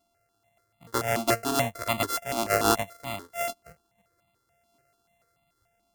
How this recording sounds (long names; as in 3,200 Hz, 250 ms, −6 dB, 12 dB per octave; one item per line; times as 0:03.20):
a buzz of ramps at a fixed pitch in blocks of 64 samples
notches that jump at a steady rate 6.9 Hz 480–1,600 Hz